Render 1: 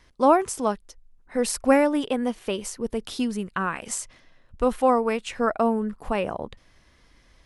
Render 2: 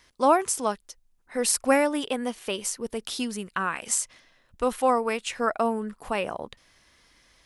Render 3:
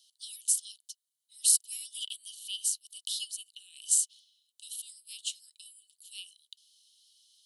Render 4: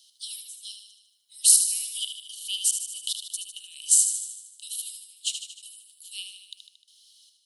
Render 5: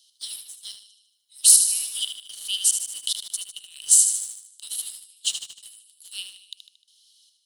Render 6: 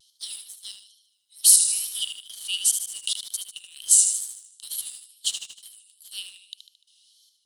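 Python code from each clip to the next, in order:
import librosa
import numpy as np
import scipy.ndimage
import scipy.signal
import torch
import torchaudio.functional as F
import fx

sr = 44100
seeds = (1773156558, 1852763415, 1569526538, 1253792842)

y1 = fx.tilt_eq(x, sr, slope=2.0)
y1 = y1 * 10.0 ** (-1.0 / 20.0)
y2 = scipy.signal.sosfilt(scipy.signal.cheby1(6, 6, 2900.0, 'highpass', fs=sr, output='sos'), y1)
y2 = y2 * 10.0 ** (3.0 / 20.0)
y3 = fx.step_gate(y2, sr, bpm=72, pattern='xx.x.xxxxx.', floor_db=-24.0, edge_ms=4.5)
y3 = fx.echo_feedback(y3, sr, ms=76, feedback_pct=60, wet_db=-7.5)
y3 = y3 * 10.0 ** (6.5 / 20.0)
y4 = fx.leveller(y3, sr, passes=1)
y5 = fx.wow_flutter(y4, sr, seeds[0], rate_hz=2.1, depth_cents=72.0)
y5 = y5 * 10.0 ** (-1.0 / 20.0)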